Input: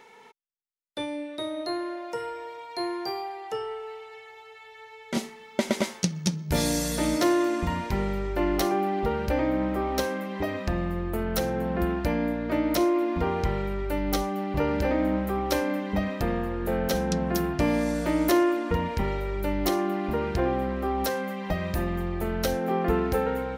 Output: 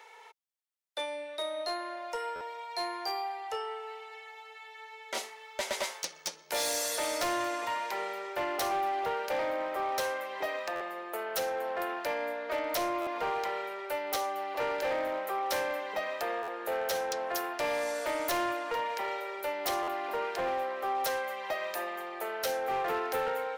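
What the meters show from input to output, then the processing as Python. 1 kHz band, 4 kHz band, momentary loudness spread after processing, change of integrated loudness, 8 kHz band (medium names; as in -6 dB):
-1.0 dB, -1.5 dB, 7 LU, -6.0 dB, -2.0 dB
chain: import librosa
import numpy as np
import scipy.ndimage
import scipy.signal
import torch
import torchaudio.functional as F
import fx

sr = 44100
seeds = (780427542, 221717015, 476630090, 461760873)

y = scipy.signal.sosfilt(scipy.signal.butter(4, 510.0, 'highpass', fs=sr, output='sos'), x)
y = np.clip(y, -10.0 ** (-27.0 / 20.0), 10.0 ** (-27.0 / 20.0))
y = fx.buffer_glitch(y, sr, at_s=(2.35, 10.75, 13.01, 16.42, 19.82), block=512, repeats=4)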